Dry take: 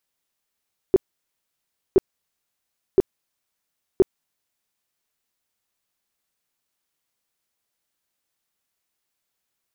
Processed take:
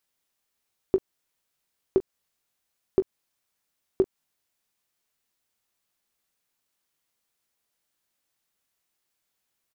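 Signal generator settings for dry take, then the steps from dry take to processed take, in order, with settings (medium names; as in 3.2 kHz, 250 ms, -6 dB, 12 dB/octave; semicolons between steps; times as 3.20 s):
tone bursts 382 Hz, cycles 8, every 1.02 s, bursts 4, -9 dBFS
compression, threshold -19 dBFS; doubling 21 ms -11.5 dB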